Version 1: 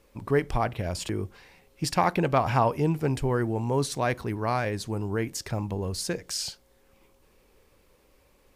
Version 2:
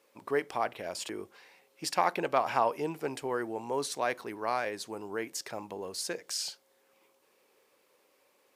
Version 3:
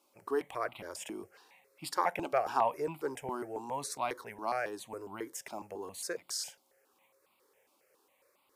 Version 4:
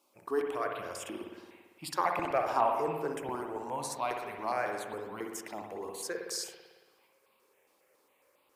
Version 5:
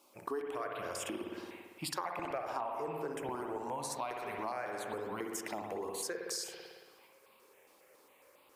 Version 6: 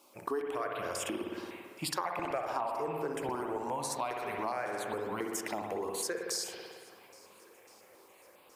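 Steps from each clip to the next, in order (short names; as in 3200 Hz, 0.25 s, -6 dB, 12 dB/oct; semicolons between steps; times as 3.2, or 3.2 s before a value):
HPF 390 Hz 12 dB/oct; gain -3 dB
step phaser 7.3 Hz 480–1700 Hz
spring tank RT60 1.4 s, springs 56 ms, chirp 70 ms, DRR 2.5 dB
compressor 6:1, threshold -42 dBFS, peak gain reduction 18.5 dB; gain +6 dB
swung echo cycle 1.371 s, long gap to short 1.5:1, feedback 43%, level -24 dB; gain +3.5 dB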